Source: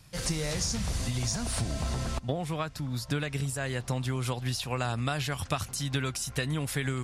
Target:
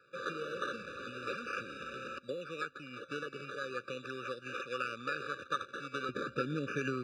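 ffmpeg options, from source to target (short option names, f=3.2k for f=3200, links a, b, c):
-af "acrusher=samples=14:mix=1:aa=0.000001:lfo=1:lforange=8.4:lforate=0.39,asetnsamples=n=441:p=0,asendcmd='6.09 highpass f 280',highpass=570,lowpass=3.2k,afftfilt=real='re*eq(mod(floor(b*sr/1024/580),2),0)':imag='im*eq(mod(floor(b*sr/1024/580),2),0)':win_size=1024:overlap=0.75,volume=1.5dB"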